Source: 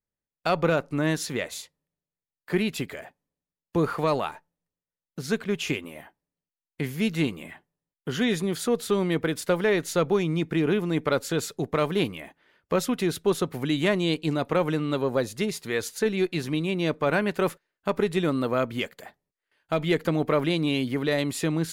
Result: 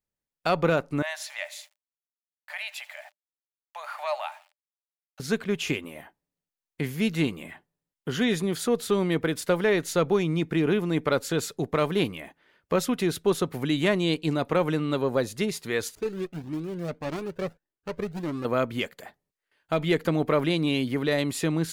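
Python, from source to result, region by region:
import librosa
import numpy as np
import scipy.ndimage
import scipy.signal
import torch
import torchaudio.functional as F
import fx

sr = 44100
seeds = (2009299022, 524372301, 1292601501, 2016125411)

y = fx.chain(x, sr, fx.echo_feedback(ms=82, feedback_pct=56, wet_db=-21),
    fx.sample_gate(floor_db=-49.0),
    fx.cheby_ripple_highpass(hz=580.0, ripple_db=6), at=(1.02, 5.2))
y = fx.chain(y, sr, fx.median_filter(points=41),
    fx.comb_cascade(direction='rising', hz=1.7), at=(15.95, 18.45))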